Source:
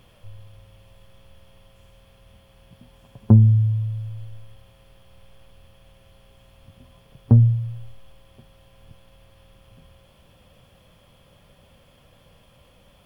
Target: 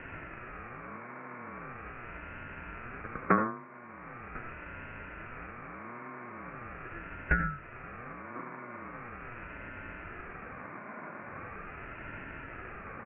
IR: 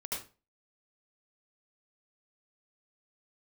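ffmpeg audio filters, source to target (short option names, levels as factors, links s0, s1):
-filter_complex "[0:a]asplit=2[s0][s1];[s1]acompressor=threshold=0.0251:ratio=6,volume=0.891[s2];[s0][s2]amix=inputs=2:normalize=0,asoftclip=type=tanh:threshold=0.168,asuperpass=centerf=1100:order=20:qfactor=0.78,asplit=2[s3][s4];[s4]adelay=1050,volume=0.126,highshelf=f=4000:g=-23.6[s5];[s3][s5]amix=inputs=2:normalize=0,asplit=2[s6][s7];[1:a]atrim=start_sample=2205[s8];[s7][s8]afir=irnorm=-1:irlink=0,volume=0.422[s9];[s6][s9]amix=inputs=2:normalize=0,aeval=exprs='val(0)*sin(2*PI*580*n/s+580*0.3/0.41*sin(2*PI*0.41*n/s))':c=same,volume=5.62"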